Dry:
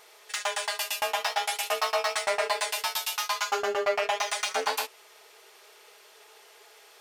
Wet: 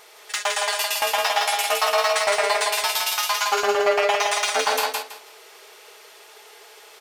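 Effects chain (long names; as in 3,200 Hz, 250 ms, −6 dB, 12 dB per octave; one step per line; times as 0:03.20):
repeating echo 163 ms, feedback 23%, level −3 dB
level +5.5 dB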